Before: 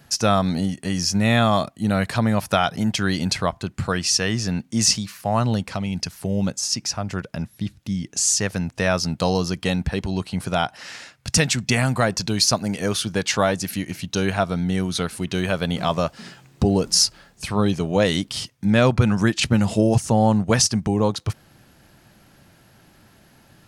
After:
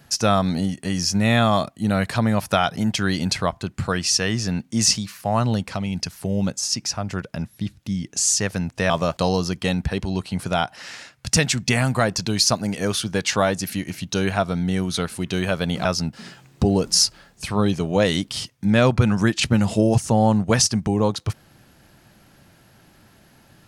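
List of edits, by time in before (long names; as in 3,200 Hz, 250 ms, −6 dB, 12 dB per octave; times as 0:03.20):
0:08.90–0:09.18: swap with 0:15.86–0:16.13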